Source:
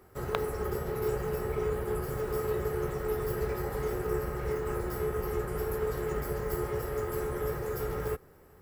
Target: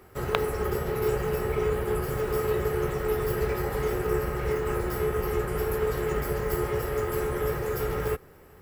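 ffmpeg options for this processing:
ffmpeg -i in.wav -af "equalizer=frequency=2700:width_type=o:width=1:gain=5,volume=4.5dB" out.wav

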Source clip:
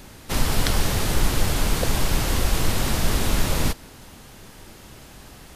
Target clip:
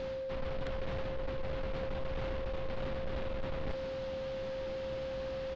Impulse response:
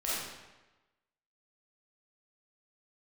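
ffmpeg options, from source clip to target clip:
-filter_complex "[0:a]acrossover=split=3100[link_01][link_02];[link_02]acompressor=threshold=-40dB:ratio=4:attack=1:release=60[link_03];[link_01][link_03]amix=inputs=2:normalize=0,lowpass=frequency=4300:width=0.5412,lowpass=frequency=4300:width=1.3066,asplit=2[link_04][link_05];[link_05]adelay=15,volume=-14dB[link_06];[link_04][link_06]amix=inputs=2:normalize=0,areverse,acompressor=threshold=-31dB:ratio=10,areverse,aeval=exprs='val(0)+0.0158*sin(2*PI*530*n/s)':channel_layout=same,aresample=16000,asoftclip=type=tanh:threshold=-32dB,aresample=44100,volume=1dB"

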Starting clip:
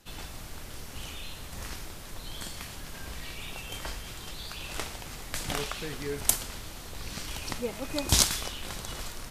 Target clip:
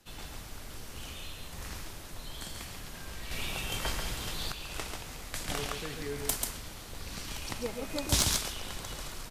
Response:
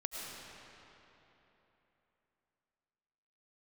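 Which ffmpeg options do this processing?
-filter_complex "[0:a]aecho=1:1:139:0.596,acrossover=split=130|2900[link_01][link_02][link_03];[link_03]asoftclip=type=tanh:threshold=-14.5dB[link_04];[link_01][link_02][link_04]amix=inputs=3:normalize=0,asettb=1/sr,asplit=3[link_05][link_06][link_07];[link_05]atrim=end=3.314[link_08];[link_06]atrim=start=3.31:end=4.52,asetpts=PTS-STARTPTS,afade=type=in:duration=0.004:curve=qsin,afade=type=out:start_time=1.206:duration=0.004:curve=qsin,acontrast=64[link_09];[link_07]atrim=start=4.516[link_10];[link_08][link_09]acrossfade=duration=0.004:curve1=hsin:curve2=qsin[link_11];[link_11][link_10]acrossfade=duration=0.004:curve1=qsin:curve2=hsin,volume=-3.5dB"

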